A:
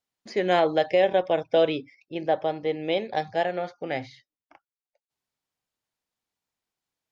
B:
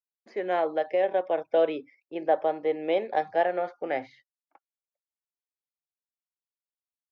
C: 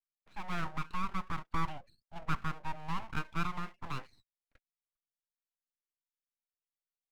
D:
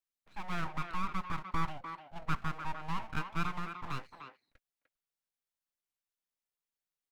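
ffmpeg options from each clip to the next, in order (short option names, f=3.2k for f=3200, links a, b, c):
-filter_complex "[0:a]agate=range=-21dB:threshold=-52dB:ratio=16:detection=peak,acrossover=split=270 2200:gain=0.112 1 0.178[a][b][c];[a][b][c]amix=inputs=3:normalize=0,dynaudnorm=f=200:g=17:m=6.5dB,volume=-4.5dB"
-filter_complex "[0:a]acrossover=split=220|660|1300[a][b][c][d];[d]aeval=exprs='clip(val(0),-1,0.00841)':c=same[e];[a][b][c][e]amix=inputs=4:normalize=0,lowpass=f=1.9k:t=q:w=1.7,aeval=exprs='abs(val(0))':c=same,volume=-8.5dB"
-filter_complex "[0:a]asplit=2[a][b];[b]adelay=300,highpass=300,lowpass=3.4k,asoftclip=type=hard:threshold=-27.5dB,volume=-7dB[c];[a][c]amix=inputs=2:normalize=0"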